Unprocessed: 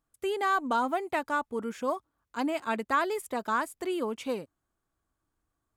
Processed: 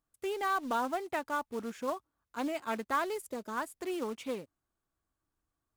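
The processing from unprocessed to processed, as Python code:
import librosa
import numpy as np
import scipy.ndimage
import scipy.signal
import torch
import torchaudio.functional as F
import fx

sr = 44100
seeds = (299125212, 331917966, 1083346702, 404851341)

y = fx.spec_box(x, sr, start_s=3.17, length_s=0.4, low_hz=640.0, high_hz=4500.0, gain_db=-8)
y = fx.quant_float(y, sr, bits=2)
y = fx.doppler_dist(y, sr, depth_ms=0.15)
y = F.gain(torch.from_numpy(y), -4.5).numpy()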